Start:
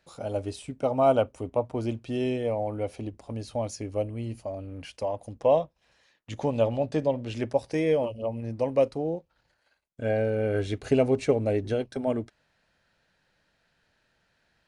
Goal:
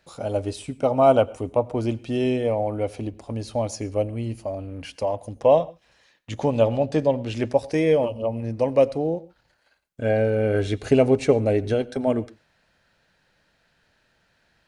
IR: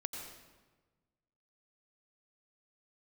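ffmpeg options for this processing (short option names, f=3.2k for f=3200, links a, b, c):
-filter_complex "[0:a]asplit=2[a][b];[1:a]atrim=start_sample=2205,atrim=end_sample=6615[c];[b][c]afir=irnorm=-1:irlink=0,volume=-12.5dB[d];[a][d]amix=inputs=2:normalize=0,volume=3.5dB"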